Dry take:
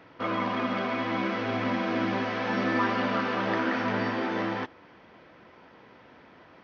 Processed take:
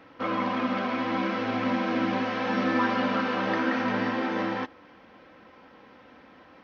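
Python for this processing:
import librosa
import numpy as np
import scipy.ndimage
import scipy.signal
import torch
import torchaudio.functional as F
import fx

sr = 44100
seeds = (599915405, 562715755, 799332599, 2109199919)

y = x + 0.42 * np.pad(x, (int(3.8 * sr / 1000.0), 0))[:len(x)]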